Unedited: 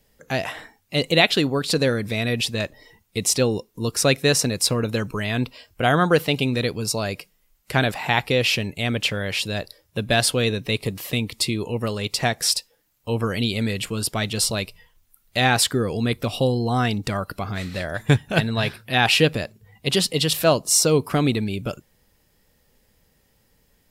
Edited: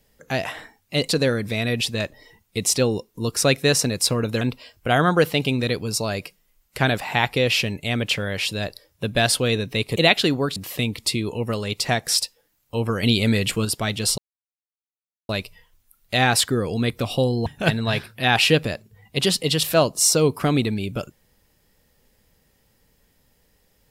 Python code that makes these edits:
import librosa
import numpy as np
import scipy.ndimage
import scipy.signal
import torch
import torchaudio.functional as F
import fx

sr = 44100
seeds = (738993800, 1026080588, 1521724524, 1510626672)

y = fx.edit(x, sr, fx.move(start_s=1.09, length_s=0.6, to_s=10.9),
    fx.cut(start_s=5.01, length_s=0.34),
    fx.clip_gain(start_s=13.37, length_s=0.62, db=4.5),
    fx.insert_silence(at_s=14.52, length_s=1.11),
    fx.cut(start_s=16.69, length_s=1.47), tone=tone)